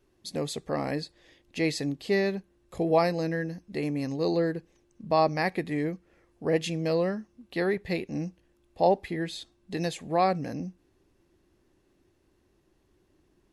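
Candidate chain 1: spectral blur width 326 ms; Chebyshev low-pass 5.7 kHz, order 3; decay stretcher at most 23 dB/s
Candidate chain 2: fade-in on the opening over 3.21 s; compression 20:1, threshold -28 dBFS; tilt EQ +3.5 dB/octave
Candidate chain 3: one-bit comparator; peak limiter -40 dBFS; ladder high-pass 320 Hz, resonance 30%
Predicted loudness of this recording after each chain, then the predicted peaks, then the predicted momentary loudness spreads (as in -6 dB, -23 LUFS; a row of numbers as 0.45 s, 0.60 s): -33.5 LUFS, -37.0 LUFS, -47.0 LUFS; -17.5 dBFS, -17.5 dBFS, -36.0 dBFS; 11 LU, 13 LU, 3 LU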